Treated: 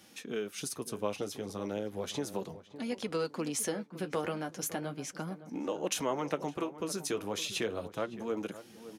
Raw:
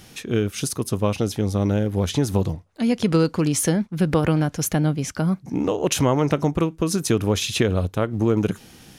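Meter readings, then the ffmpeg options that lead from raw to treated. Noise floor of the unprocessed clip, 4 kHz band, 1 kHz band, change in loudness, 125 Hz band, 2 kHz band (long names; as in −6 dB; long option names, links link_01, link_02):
−48 dBFS, −10.5 dB, −10.0 dB, −14.0 dB, −23.5 dB, −10.0 dB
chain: -filter_complex "[0:a]highpass=170,acrossover=split=340[link_01][link_02];[link_01]acompressor=threshold=-32dB:ratio=6[link_03];[link_03][link_02]amix=inputs=2:normalize=0,flanger=delay=3.5:depth=7.5:regen=-39:speed=0.35:shape=sinusoidal,asplit=2[link_04][link_05];[link_05]adelay=562,lowpass=frequency=1400:poles=1,volume=-13.5dB,asplit=2[link_06][link_07];[link_07]adelay=562,lowpass=frequency=1400:poles=1,volume=0.29,asplit=2[link_08][link_09];[link_09]adelay=562,lowpass=frequency=1400:poles=1,volume=0.29[link_10];[link_04][link_06][link_08][link_10]amix=inputs=4:normalize=0,volume=-6.5dB"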